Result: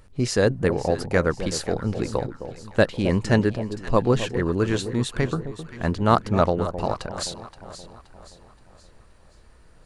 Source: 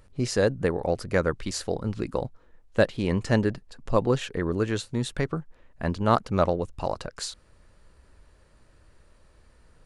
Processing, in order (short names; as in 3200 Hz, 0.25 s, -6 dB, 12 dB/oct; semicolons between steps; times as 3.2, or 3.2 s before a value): bell 560 Hz -2.5 dB 0.27 oct; on a send: echo with dull and thin repeats by turns 0.262 s, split 910 Hz, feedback 66%, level -10 dB; on the sum: gain +3.5 dB